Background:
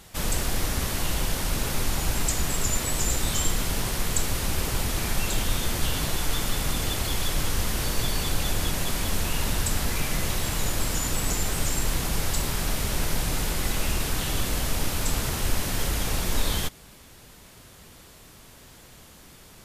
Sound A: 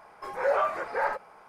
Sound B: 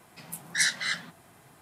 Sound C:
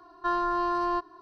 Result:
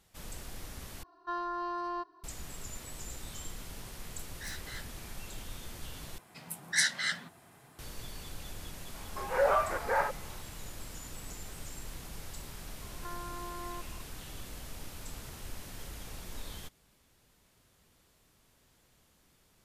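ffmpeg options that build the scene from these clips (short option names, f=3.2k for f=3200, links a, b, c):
-filter_complex "[3:a]asplit=2[a][b];[2:a]asplit=2[c][d];[0:a]volume=-18dB[e];[a]bass=f=250:g=-6,treble=f=4k:g=1[f];[c]asoftclip=type=tanh:threshold=-27dB[g];[b]acompressor=threshold=-36dB:ratio=6:attack=3.2:release=140:knee=1:detection=peak[h];[e]asplit=3[i][j][k];[i]atrim=end=1.034[l];[f]atrim=end=1.21,asetpts=PTS-STARTPTS,volume=-8.5dB[m];[j]atrim=start=2.236:end=6.184[n];[d]atrim=end=1.61,asetpts=PTS-STARTPTS,volume=-2.5dB[o];[k]atrim=start=7.786[p];[g]atrim=end=1.61,asetpts=PTS-STARTPTS,volume=-13dB,afade=t=in:d=0.004:c=hsin,afade=t=out:st=1.606:d=0.004:c=hsin,adelay=3860[q];[1:a]atrim=end=1.48,asetpts=PTS-STARTPTS,volume=-1.5dB,afade=t=in:d=0.004:c=hsin,afade=t=out:st=1.476:d=0.004:c=hsin,adelay=8940[r];[h]atrim=end=1.21,asetpts=PTS-STARTPTS,volume=-5dB,afade=t=in:d=0.004:c=hsin,afade=t=out:st=1.206:d=0.004:c=hsin,adelay=12810[s];[l][m]acrossfade=d=0.004:c1=hsin:c2=hsin[t];[t][n]acrossfade=d=0.004:c1=hsin:c2=hsin[u];[u][o]acrossfade=d=0.004:c1=hsin:c2=hsin[v];[v][p]acrossfade=d=0.004:c1=hsin:c2=hsin[w];[w][q][r][s]amix=inputs=4:normalize=0"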